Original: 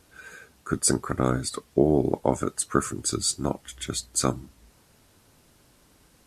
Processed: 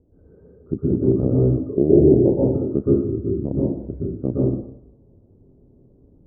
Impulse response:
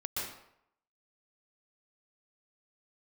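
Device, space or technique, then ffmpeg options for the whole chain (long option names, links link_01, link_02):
next room: -filter_complex "[0:a]lowpass=frequency=480:width=0.5412,lowpass=frequency=480:width=1.3066[link_01];[1:a]atrim=start_sample=2205[link_02];[link_01][link_02]afir=irnorm=-1:irlink=0,volume=5.5dB"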